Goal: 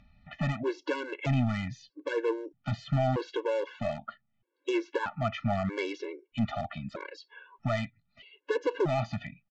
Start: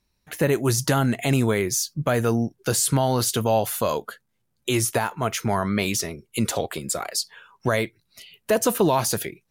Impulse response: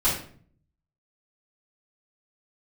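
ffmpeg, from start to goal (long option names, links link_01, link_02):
-af "lowpass=frequency=3000:width=0.5412,lowpass=frequency=3000:width=1.3066,acompressor=mode=upward:threshold=-42dB:ratio=2.5,aresample=16000,volume=18.5dB,asoftclip=hard,volume=-18.5dB,aresample=44100,afftfilt=real='re*gt(sin(2*PI*0.79*pts/sr)*(1-2*mod(floor(b*sr/1024/290),2)),0)':imag='im*gt(sin(2*PI*0.79*pts/sr)*(1-2*mod(floor(b*sr/1024/290),2)),0)':win_size=1024:overlap=0.75,volume=-2.5dB"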